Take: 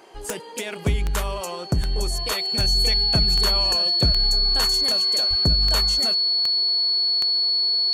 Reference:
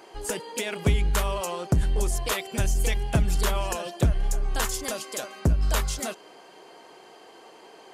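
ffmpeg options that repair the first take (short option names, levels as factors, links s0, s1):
-filter_complex "[0:a]adeclick=t=4,bandreject=f=4400:w=30,asplit=3[s0][s1][s2];[s0]afade=t=out:st=5.29:d=0.02[s3];[s1]highpass=f=140:w=0.5412,highpass=f=140:w=1.3066,afade=t=in:st=5.29:d=0.02,afade=t=out:st=5.41:d=0.02[s4];[s2]afade=t=in:st=5.41:d=0.02[s5];[s3][s4][s5]amix=inputs=3:normalize=0"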